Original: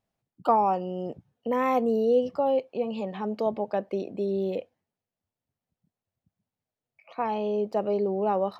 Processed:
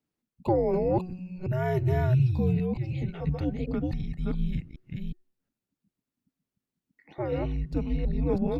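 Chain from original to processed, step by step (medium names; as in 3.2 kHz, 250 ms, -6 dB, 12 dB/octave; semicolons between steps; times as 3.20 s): chunks repeated in reverse 366 ms, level -1.5 dB; de-hum 365.1 Hz, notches 6; frequency shift -360 Hz; trim -2.5 dB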